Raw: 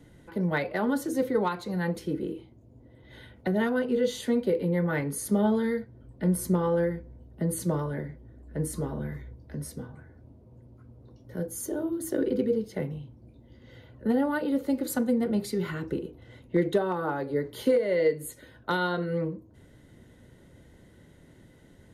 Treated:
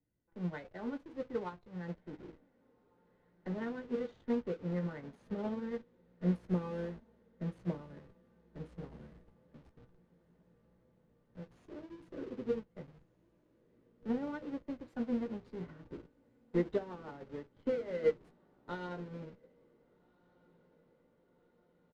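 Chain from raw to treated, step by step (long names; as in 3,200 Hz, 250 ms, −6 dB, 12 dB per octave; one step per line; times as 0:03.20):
adaptive Wiener filter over 9 samples
high-shelf EQ 12,000 Hz +7 dB
in parallel at −4 dB: comparator with hysteresis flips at −35.5 dBFS
on the sum: high-frequency loss of the air 160 metres
double-tracking delay 17 ms −10 dB
feedback delay with all-pass diffusion 1,559 ms, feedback 71%, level −13.5 dB
expander for the loud parts 2.5 to 1, over −33 dBFS
level −6.5 dB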